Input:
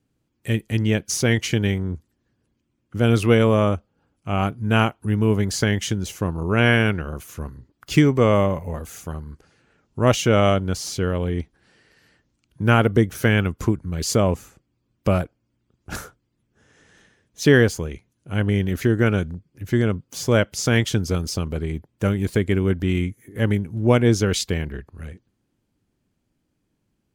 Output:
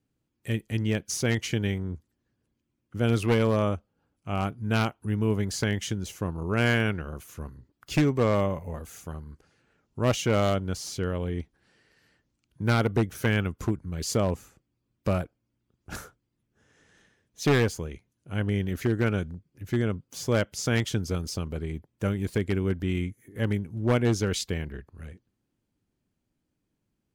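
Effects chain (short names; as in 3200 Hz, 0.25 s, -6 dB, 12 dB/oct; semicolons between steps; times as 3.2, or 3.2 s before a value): one-sided fold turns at -10.5 dBFS; gain -6.5 dB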